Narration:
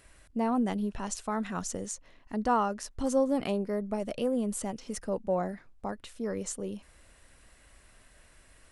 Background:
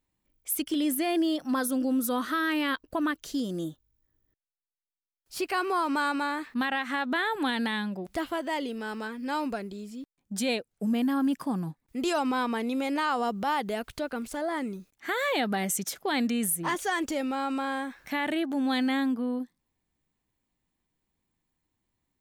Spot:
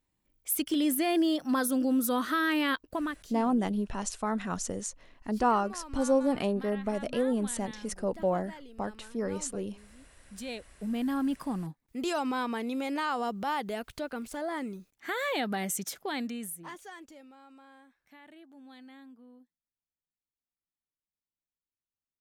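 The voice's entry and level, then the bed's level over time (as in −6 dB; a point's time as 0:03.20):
2.95 s, +1.0 dB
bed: 0:02.84 0 dB
0:03.55 −17 dB
0:09.98 −17 dB
0:11.10 −3.5 dB
0:15.95 −3.5 dB
0:17.37 −24.5 dB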